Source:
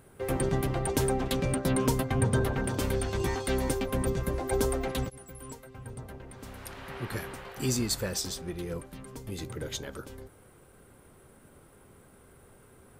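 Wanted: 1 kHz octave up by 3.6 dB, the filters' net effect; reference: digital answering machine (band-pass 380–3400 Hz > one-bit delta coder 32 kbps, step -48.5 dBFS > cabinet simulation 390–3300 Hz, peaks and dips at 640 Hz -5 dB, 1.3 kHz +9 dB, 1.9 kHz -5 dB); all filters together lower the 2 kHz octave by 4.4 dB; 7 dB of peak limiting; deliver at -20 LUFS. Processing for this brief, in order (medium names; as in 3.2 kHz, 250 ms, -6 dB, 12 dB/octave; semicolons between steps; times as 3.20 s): peaking EQ 1 kHz +5.5 dB; peaking EQ 2 kHz -9 dB; peak limiter -19.5 dBFS; band-pass 380–3400 Hz; one-bit delta coder 32 kbps, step -48.5 dBFS; cabinet simulation 390–3300 Hz, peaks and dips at 640 Hz -5 dB, 1.3 kHz +9 dB, 1.9 kHz -5 dB; trim +19 dB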